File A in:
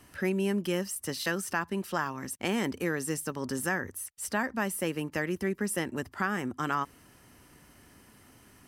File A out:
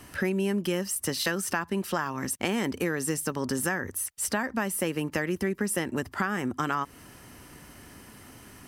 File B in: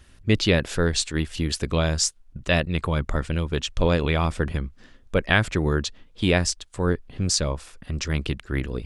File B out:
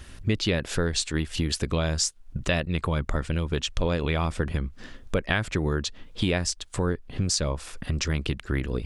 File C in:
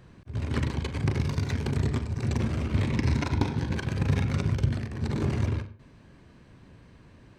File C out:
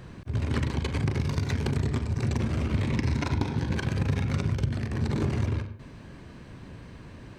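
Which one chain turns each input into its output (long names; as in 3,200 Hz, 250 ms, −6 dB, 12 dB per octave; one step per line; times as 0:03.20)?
downward compressor 3 to 1, threshold −34 dBFS
level +8 dB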